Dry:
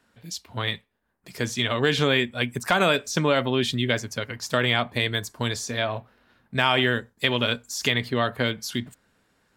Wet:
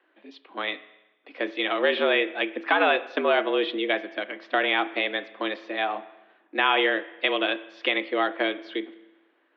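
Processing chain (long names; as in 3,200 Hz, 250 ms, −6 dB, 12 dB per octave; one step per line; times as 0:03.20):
single-sideband voice off tune +96 Hz 190–3,200 Hz
spring reverb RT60 1 s, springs 33/48 ms, chirp 50 ms, DRR 15 dB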